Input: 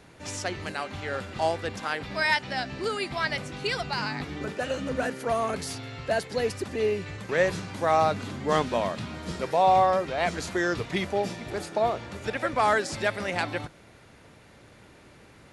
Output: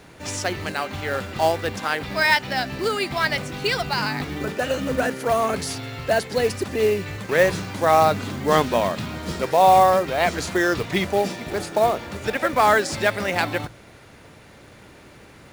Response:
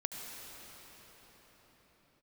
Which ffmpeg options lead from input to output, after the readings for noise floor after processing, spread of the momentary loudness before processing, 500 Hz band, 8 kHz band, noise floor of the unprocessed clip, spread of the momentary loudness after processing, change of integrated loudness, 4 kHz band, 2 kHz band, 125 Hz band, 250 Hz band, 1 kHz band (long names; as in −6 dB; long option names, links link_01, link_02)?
−47 dBFS, 10 LU, +6.0 dB, +7.0 dB, −53 dBFS, 10 LU, +6.0 dB, +6.0 dB, +6.0 dB, +5.5 dB, +6.0 dB, +6.0 dB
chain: -af "acrusher=bits=5:mode=log:mix=0:aa=0.000001,bandreject=frequency=57.58:width_type=h:width=4,bandreject=frequency=115.16:width_type=h:width=4,bandreject=frequency=172.74:width_type=h:width=4,bandreject=frequency=230.32:width_type=h:width=4,volume=6dB"